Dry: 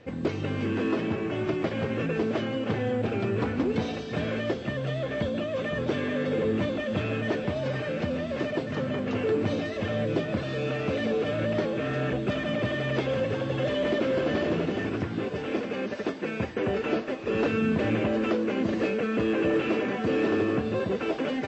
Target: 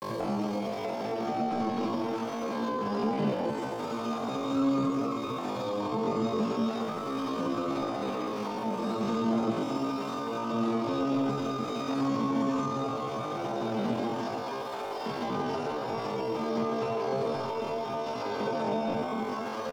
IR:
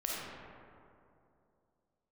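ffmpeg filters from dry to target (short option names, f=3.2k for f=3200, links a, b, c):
-filter_complex "[1:a]atrim=start_sample=2205,asetrate=79380,aresample=44100[a];[0:a][a]afir=irnorm=-1:irlink=0,tremolo=f=0.59:d=0.51,acrusher=bits=7:mix=0:aa=0.000001,highshelf=f=3.9k:g=-10.5,asplit=2[b][c];[c]adelay=291,lowpass=f=1.9k:p=1,volume=-9.5dB,asplit=2[d][e];[e]adelay=291,lowpass=f=1.9k:p=1,volume=0.19,asplit=2[f][g];[g]adelay=291,lowpass=f=1.9k:p=1,volume=0.19[h];[b][d][f][h]amix=inputs=4:normalize=0,acrossover=split=180[i][j];[j]acompressor=threshold=-41dB:ratio=6[k];[i][k]amix=inputs=2:normalize=0,asetrate=48000,aresample=44100,bandreject=f=50:t=h:w=6,bandreject=f=100:t=h:w=6,bandreject=f=150:t=h:w=6,bandreject=f=200:t=h:w=6,bandreject=f=250:t=h:w=6,bandreject=f=300:t=h:w=6,asetrate=83250,aresample=44100,atempo=0.529732,equalizer=f=120:w=1.5:g=4,volume=7dB"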